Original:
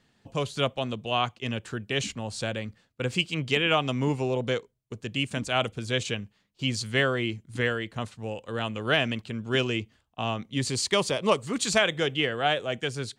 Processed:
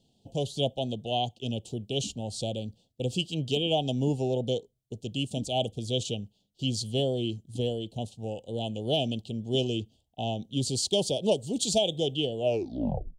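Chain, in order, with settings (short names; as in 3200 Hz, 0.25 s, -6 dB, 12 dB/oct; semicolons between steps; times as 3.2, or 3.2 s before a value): tape stop at the end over 0.84 s; elliptic band-stop 760–3100 Hz, stop band 40 dB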